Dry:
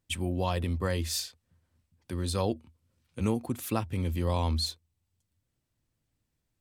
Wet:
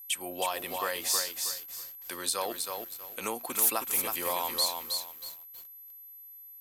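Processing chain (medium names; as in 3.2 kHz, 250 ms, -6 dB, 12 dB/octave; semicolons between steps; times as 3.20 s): high-pass 810 Hz 12 dB/octave; compression 3:1, threshold -37 dBFS, peak gain reduction 7.5 dB; dynamic bell 3.3 kHz, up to -4 dB, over -51 dBFS, Q 0.81; whistle 12 kHz -58 dBFS; treble shelf 5.8 kHz +6 dB, from 3.56 s +11 dB, from 4.68 s +3.5 dB; bit-crushed delay 319 ms, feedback 35%, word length 9-bit, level -4 dB; trim +8.5 dB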